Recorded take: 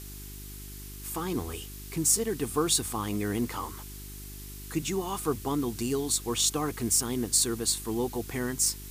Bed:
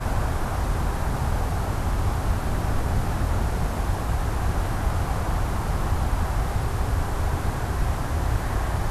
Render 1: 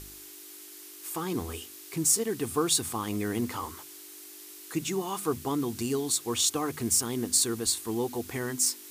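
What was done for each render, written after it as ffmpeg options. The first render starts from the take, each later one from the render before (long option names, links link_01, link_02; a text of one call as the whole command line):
ffmpeg -i in.wav -af "bandreject=frequency=50:width_type=h:width=4,bandreject=frequency=100:width_type=h:width=4,bandreject=frequency=150:width_type=h:width=4,bandreject=frequency=200:width_type=h:width=4,bandreject=frequency=250:width_type=h:width=4" out.wav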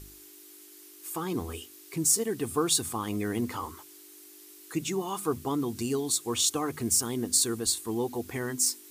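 ffmpeg -i in.wav -af "afftdn=noise_reduction=6:noise_floor=-47" out.wav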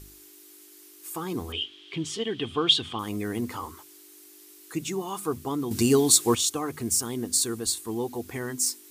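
ffmpeg -i in.wav -filter_complex "[0:a]asettb=1/sr,asplit=3[link_01][link_02][link_03];[link_01]atrim=end=1.524[link_04];[link_02]atrim=start=1.52:end=2.99,asetpts=PTS-STARTPTS,afade=type=in:duration=0.004:curve=qsin,afade=type=out:start_time=1.466:duration=0.004:curve=qsin,lowpass=frequency=3200:width_type=q:width=13[link_05];[link_03]atrim=start=2.986[link_06];[link_04][link_05]acrossfade=duration=0.004:curve1=hsin:curve2=qsin[link_07];[link_07][link_06]acrossfade=duration=0.004:curve1=qsin:curve2=hsin,asplit=3[link_08][link_09][link_10];[link_08]atrim=end=5.712[link_11];[link_09]atrim=start=5.708:end=6.352,asetpts=PTS-STARTPTS,volume=9.5dB[link_12];[link_10]atrim=start=6.348[link_13];[link_11][link_12]acrossfade=duration=0.004:curve1=hsin:curve2=hsin[link_14];[link_14][link_13]acrossfade=duration=0.004:curve1=hsin:curve2=hsin" out.wav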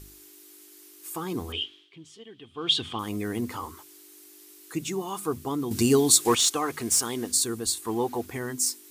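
ffmpeg -i in.wav -filter_complex "[0:a]asettb=1/sr,asplit=3[link_01][link_02][link_03];[link_01]atrim=end=6.254[link_04];[link_02]atrim=start=6.25:end=7.32,asetpts=PTS-STARTPTS,afade=type=in:duration=0.004:curve=qsin,afade=type=out:start_time=1.066:duration=0.004:curve=qsin,asplit=2[link_05][link_06];[link_06]highpass=frequency=720:poles=1,volume=11dB,asoftclip=type=tanh:threshold=-10dB[link_07];[link_05][link_07]amix=inputs=2:normalize=0,lowpass=frequency=7400:poles=1,volume=-6dB[link_08];[link_03]atrim=start=7.316[link_09];[link_04][link_08]acrossfade=duration=0.004:curve1=hsin:curve2=qsin[link_10];[link_10][link_09]acrossfade=duration=0.004:curve1=qsin:curve2=hsin,asettb=1/sr,asplit=3[link_11][link_12][link_13];[link_11]atrim=end=7.824[link_14];[link_12]atrim=start=7.82:end=8.26,asetpts=PTS-STARTPTS,afade=type=in:duration=0.004:curve=qsin,afade=type=out:start_time=0.436:duration=0.004:curve=qsin,equalizer=frequency=1200:width_type=o:width=2.3:gain=8.5[link_15];[link_13]atrim=start=8.256[link_16];[link_14][link_15]acrossfade=duration=0.004:curve1=hsin:curve2=qsin[link_17];[link_17][link_16]acrossfade=duration=0.004:curve1=qsin:curve2=hsin,asplit=3[link_18][link_19][link_20];[link_18]atrim=end=1.9,asetpts=PTS-STARTPTS,afade=type=out:start_time=1.64:duration=0.26:silence=0.149624[link_21];[link_19]atrim=start=1.9:end=2.54,asetpts=PTS-STARTPTS,volume=-16.5dB[link_22];[link_20]atrim=start=2.54,asetpts=PTS-STARTPTS,afade=type=in:duration=0.26:silence=0.149624[link_23];[link_21][link_22][link_23]concat=n=3:v=0:a=1" out.wav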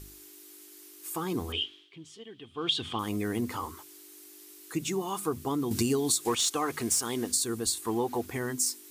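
ffmpeg -i in.wav -af "acompressor=threshold=-24dB:ratio=6" out.wav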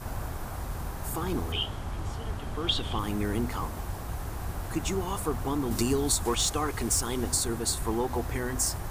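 ffmpeg -i in.wav -i bed.wav -filter_complex "[1:a]volume=-10.5dB[link_01];[0:a][link_01]amix=inputs=2:normalize=0" out.wav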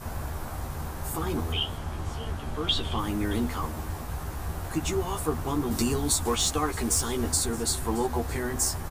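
ffmpeg -i in.wav -filter_complex "[0:a]asplit=2[link_01][link_02];[link_02]adelay=13,volume=-4.5dB[link_03];[link_01][link_03]amix=inputs=2:normalize=0,aecho=1:1:622:0.112" out.wav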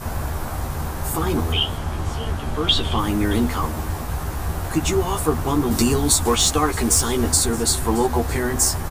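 ffmpeg -i in.wav -af "volume=8dB" out.wav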